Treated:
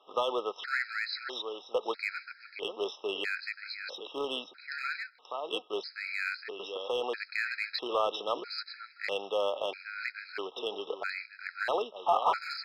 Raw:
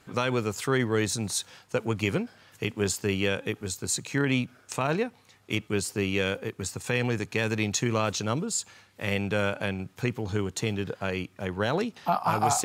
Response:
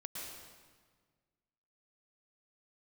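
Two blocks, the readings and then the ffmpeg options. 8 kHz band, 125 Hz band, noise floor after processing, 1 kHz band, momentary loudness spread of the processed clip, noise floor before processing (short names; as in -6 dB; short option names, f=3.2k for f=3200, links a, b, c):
-26.5 dB, under -35 dB, -58 dBFS, -2.0 dB, 9 LU, -60 dBFS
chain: -filter_complex "[0:a]bandreject=f=2.6k:w=9.5,aresample=11025,acrusher=bits=5:mode=log:mix=0:aa=0.000001,aresample=44100,highpass=f=470:w=0.5412,highpass=f=470:w=1.3066,aecho=1:1:533:0.355,asplit=2[a][b];[b]asoftclip=type=hard:threshold=-25.5dB,volume=-4dB[c];[a][c]amix=inputs=2:normalize=0,afftfilt=real='re*gt(sin(2*PI*0.77*pts/sr)*(1-2*mod(floor(b*sr/1024/1300),2)),0)':imag='im*gt(sin(2*PI*0.77*pts/sr)*(1-2*mod(floor(b*sr/1024/1300),2)),0)':win_size=1024:overlap=0.75,volume=-2.5dB"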